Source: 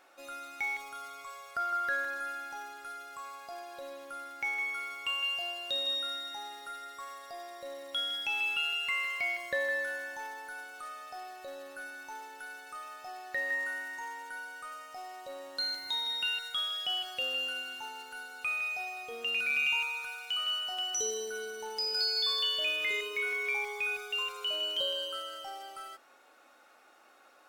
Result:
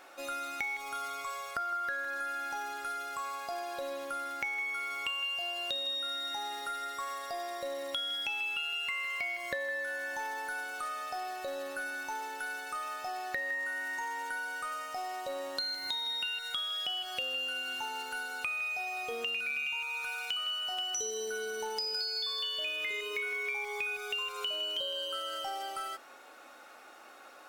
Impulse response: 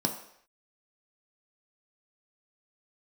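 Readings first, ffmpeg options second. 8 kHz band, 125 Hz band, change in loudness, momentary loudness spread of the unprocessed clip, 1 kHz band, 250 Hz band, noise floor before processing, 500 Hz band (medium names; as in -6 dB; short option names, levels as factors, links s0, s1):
-0.5 dB, no reading, -2.0 dB, 15 LU, +3.0 dB, +3.5 dB, -60 dBFS, +1.0 dB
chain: -af "acompressor=threshold=0.00891:ratio=6,volume=2.37"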